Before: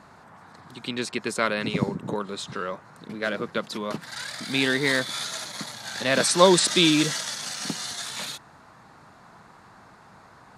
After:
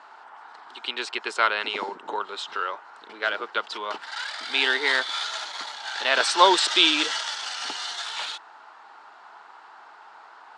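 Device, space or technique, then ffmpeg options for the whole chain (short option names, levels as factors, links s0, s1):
phone speaker on a table: -af "highpass=f=400:w=0.5412,highpass=f=400:w=1.3066,equalizer=f=530:t=q:w=4:g=-7,equalizer=f=870:t=q:w=4:g=8,equalizer=f=1400:t=q:w=4:g=6,equalizer=f=3000:t=q:w=4:g=8,equalizer=f=6500:t=q:w=4:g=-5,lowpass=f=7200:w=0.5412,lowpass=f=7200:w=1.3066"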